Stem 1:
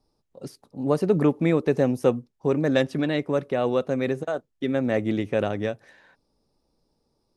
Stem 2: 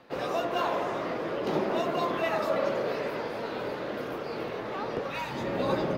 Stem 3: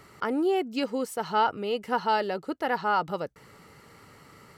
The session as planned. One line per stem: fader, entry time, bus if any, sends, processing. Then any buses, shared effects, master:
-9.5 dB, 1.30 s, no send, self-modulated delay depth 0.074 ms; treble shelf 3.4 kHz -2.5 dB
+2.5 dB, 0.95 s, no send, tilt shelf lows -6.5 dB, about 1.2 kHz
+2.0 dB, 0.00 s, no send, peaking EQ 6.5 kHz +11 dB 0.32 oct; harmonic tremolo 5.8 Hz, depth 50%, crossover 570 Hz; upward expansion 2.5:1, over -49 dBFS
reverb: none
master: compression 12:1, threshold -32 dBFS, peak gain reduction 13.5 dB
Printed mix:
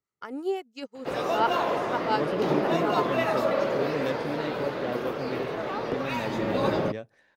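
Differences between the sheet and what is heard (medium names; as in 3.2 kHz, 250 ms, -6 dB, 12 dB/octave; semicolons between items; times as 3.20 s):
stem 2: missing tilt shelf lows -6.5 dB, about 1.2 kHz; master: missing compression 12:1, threshold -32 dBFS, peak gain reduction 13.5 dB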